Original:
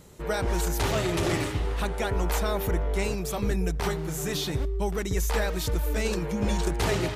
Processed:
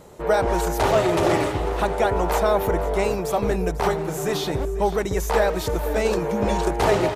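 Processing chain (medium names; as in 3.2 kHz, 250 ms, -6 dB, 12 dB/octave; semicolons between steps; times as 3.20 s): peaking EQ 690 Hz +12 dB 2.1 oct; feedback delay 495 ms, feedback 49%, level -16 dB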